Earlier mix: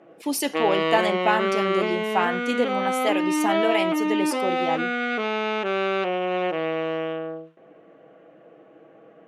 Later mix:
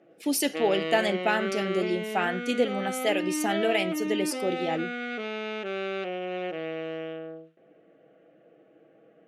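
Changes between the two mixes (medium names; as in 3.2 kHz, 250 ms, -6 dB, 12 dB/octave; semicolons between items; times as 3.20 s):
background -6.5 dB; master: add peaking EQ 1 kHz -14 dB 0.44 oct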